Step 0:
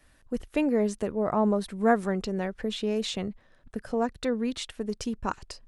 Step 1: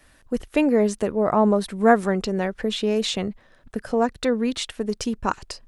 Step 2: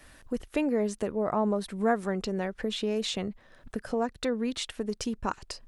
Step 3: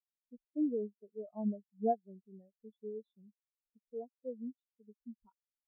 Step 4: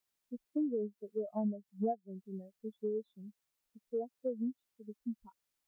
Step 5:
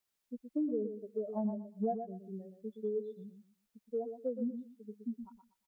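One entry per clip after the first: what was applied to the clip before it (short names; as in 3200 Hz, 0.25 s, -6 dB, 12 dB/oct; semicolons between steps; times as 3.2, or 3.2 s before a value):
low shelf 190 Hz -4 dB; gain +7 dB
compressor 1.5:1, threshold -45 dBFS, peak gain reduction 12.5 dB; gain +2 dB
spectral expander 4:1; gain -7 dB
compressor 5:1, threshold -43 dBFS, peak gain reduction 15.5 dB; gain +10.5 dB
feedback echo 0.12 s, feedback 23%, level -8 dB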